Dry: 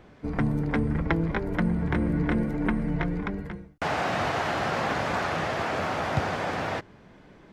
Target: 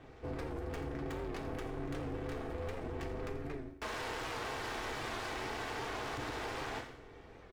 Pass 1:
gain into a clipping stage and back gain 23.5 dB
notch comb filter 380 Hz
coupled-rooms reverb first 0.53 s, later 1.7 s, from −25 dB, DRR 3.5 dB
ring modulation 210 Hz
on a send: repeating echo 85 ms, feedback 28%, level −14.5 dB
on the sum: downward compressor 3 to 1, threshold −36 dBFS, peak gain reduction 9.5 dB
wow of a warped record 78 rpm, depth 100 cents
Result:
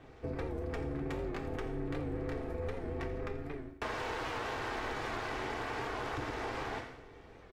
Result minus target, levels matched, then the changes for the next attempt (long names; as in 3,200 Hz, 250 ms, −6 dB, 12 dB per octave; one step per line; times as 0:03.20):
gain into a clipping stage and back: distortion −8 dB
change: gain into a clipping stage and back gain 34 dB